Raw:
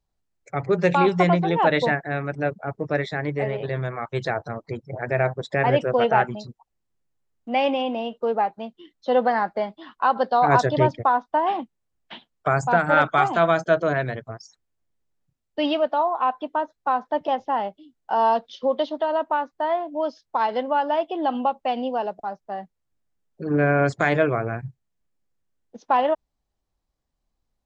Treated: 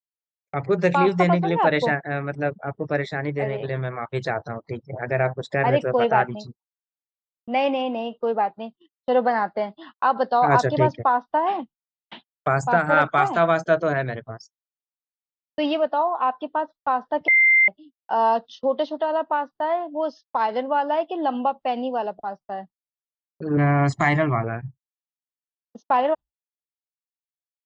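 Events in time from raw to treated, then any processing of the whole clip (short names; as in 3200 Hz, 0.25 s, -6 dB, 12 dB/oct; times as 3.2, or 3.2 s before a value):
17.28–17.68 bleep 2090 Hz -12 dBFS
23.57–24.44 comb 1 ms, depth 93%
whole clip: spectral noise reduction 19 dB; gate -42 dBFS, range -45 dB; dynamic EQ 3300 Hz, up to -4 dB, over -46 dBFS, Q 4.5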